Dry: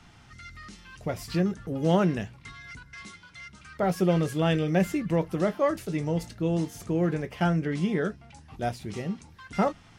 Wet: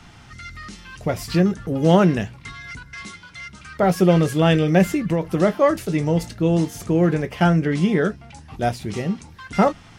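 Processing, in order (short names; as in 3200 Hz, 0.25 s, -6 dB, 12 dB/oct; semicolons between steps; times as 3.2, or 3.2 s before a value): 4.83–5.25 compressor, threshold -25 dBFS, peak gain reduction 6 dB; gain +8 dB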